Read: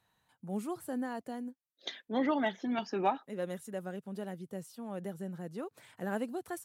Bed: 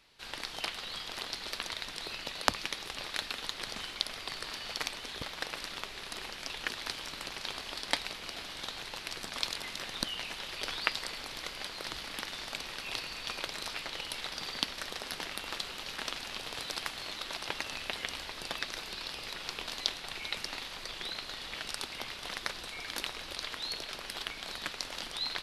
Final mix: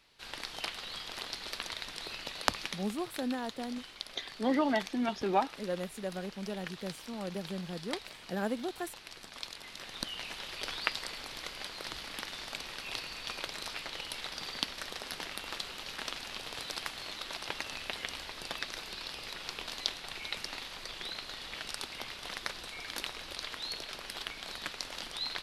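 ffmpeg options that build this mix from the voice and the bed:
ffmpeg -i stem1.wav -i stem2.wav -filter_complex "[0:a]adelay=2300,volume=1.5dB[link_01];[1:a]volume=5.5dB,afade=type=out:start_time=2.63:duration=0.34:silence=0.446684,afade=type=in:start_time=9.57:duration=0.76:silence=0.446684[link_02];[link_01][link_02]amix=inputs=2:normalize=0" out.wav

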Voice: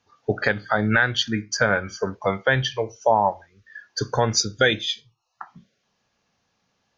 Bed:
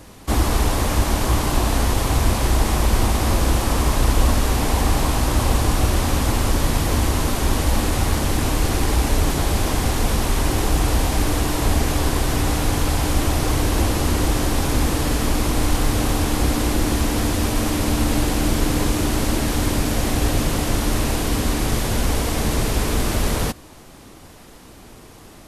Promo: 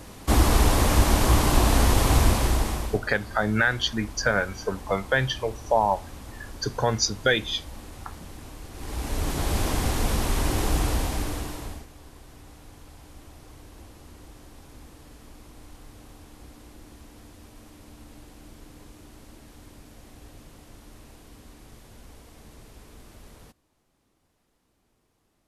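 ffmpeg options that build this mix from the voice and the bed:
ffmpeg -i stem1.wav -i stem2.wav -filter_complex "[0:a]adelay=2650,volume=-3dB[link_01];[1:a]volume=16.5dB,afade=type=out:start_time=2.17:duration=0.83:silence=0.0841395,afade=type=in:start_time=8.73:duration=0.85:silence=0.141254,afade=type=out:start_time=10.76:duration=1.11:silence=0.0707946[link_02];[link_01][link_02]amix=inputs=2:normalize=0" out.wav

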